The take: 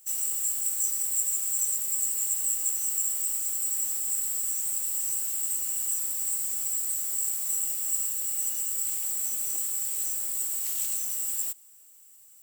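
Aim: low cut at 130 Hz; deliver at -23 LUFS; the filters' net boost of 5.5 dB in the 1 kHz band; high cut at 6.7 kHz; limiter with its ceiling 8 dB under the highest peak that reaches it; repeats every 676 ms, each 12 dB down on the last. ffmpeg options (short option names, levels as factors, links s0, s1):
-af "highpass=130,lowpass=6700,equalizer=f=1000:t=o:g=7,alimiter=level_in=1.5:limit=0.0631:level=0:latency=1,volume=0.668,aecho=1:1:676|1352|2028:0.251|0.0628|0.0157,volume=3.76"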